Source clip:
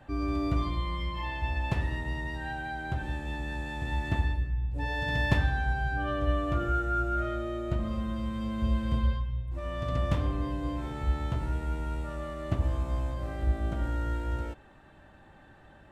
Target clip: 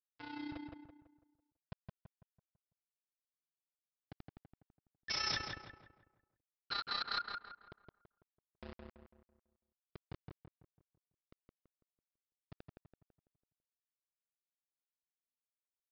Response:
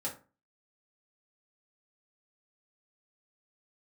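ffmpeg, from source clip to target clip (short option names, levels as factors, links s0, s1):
-filter_complex "[0:a]lowpass=f=3000:w=0.5412,lowpass=f=3000:w=1.3066,bandreject=f=60:t=h:w=6,bandreject=f=120:t=h:w=6,bandreject=f=180:t=h:w=6,afftfilt=real='re*gte(hypot(re,im),0.251)':imag='im*gte(hypot(re,im),0.251)':win_size=1024:overlap=0.75,aderivative,acrusher=bits=9:mix=0:aa=0.000001,aresample=11025,aeval=exprs='(mod(211*val(0)+1,2)-1)/211':c=same,aresample=44100,tremolo=f=31:d=0.667,asplit=2[s0][s1];[s1]adelay=166,lowpass=f=2200:p=1,volume=0.708,asplit=2[s2][s3];[s3]adelay=166,lowpass=f=2200:p=1,volume=0.43,asplit=2[s4][s5];[s5]adelay=166,lowpass=f=2200:p=1,volume=0.43,asplit=2[s6][s7];[s7]adelay=166,lowpass=f=2200:p=1,volume=0.43,asplit=2[s8][s9];[s9]adelay=166,lowpass=f=2200:p=1,volume=0.43,asplit=2[s10][s11];[s11]adelay=166,lowpass=f=2200:p=1,volume=0.43[s12];[s0][s2][s4][s6][s8][s10][s12]amix=inputs=7:normalize=0,volume=6.68"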